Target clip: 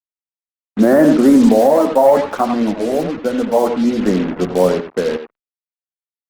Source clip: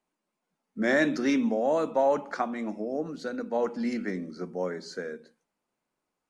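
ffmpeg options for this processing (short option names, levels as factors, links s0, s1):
-filter_complex "[0:a]lowpass=f=1200:w=0.5412,lowpass=f=1200:w=1.3066,acontrast=38,acrusher=bits=5:mix=0:aa=0.5,asettb=1/sr,asplit=3[s0][s1][s2];[s0]atrim=end=1.674[s3];[s1]atrim=start=1.67:end=4.03,asetpts=PTS-STARTPTS,afade=t=in:d=0.004:c=qsin,afade=t=out:st=2.356:d=0.004:c=qsin,flanger=delay=7.2:depth=5.8:regen=-14:speed=1.2:shape=triangular[s4];[s2]atrim=start=4.026[s5];[s3][s4]acrossfade=d=0.004:c1=hsin:c2=qsin[s6];[s6][s5]acrossfade=d=0.004:c1=qsin:c2=hsin,asplit=2[s7][s8];[s8]adelay=90,highpass=300,lowpass=3400,asoftclip=type=hard:threshold=0.126,volume=0.398[s9];[s7][s9]amix=inputs=2:normalize=0,alimiter=level_in=4.47:limit=0.891:release=50:level=0:latency=1,volume=0.891" -ar 48000 -c:a libopus -b:a 20k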